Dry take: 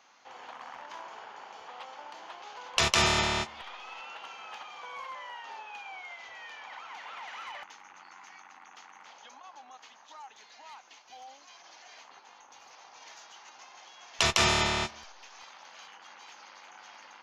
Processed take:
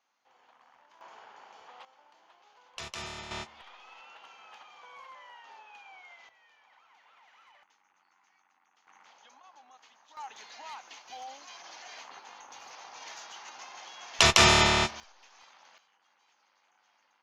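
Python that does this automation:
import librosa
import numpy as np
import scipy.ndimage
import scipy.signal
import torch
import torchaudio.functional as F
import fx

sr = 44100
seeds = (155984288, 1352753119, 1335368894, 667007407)

y = fx.gain(x, sr, db=fx.steps((0.0, -17.0), (1.01, -6.0), (1.85, -16.0), (3.31, -8.0), (6.29, -18.0), (8.87, -6.5), (10.17, 5.0), (15.0, -7.0), (15.78, -19.0)))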